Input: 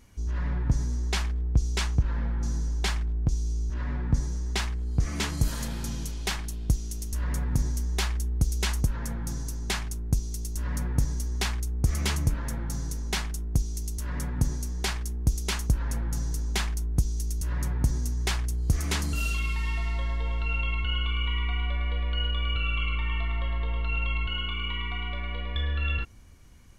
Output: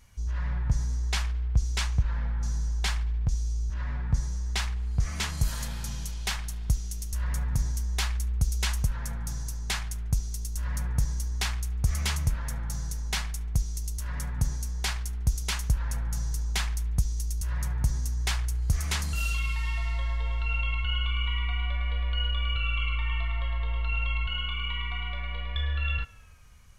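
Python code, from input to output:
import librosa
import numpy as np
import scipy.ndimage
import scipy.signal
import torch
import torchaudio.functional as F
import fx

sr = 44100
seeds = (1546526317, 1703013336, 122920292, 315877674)

y = fx.peak_eq(x, sr, hz=310.0, db=-14.0, octaves=1.2)
y = fx.echo_tape(y, sr, ms=72, feedback_pct=84, wet_db=-20.0, lp_hz=4300.0, drive_db=18.0, wow_cents=32)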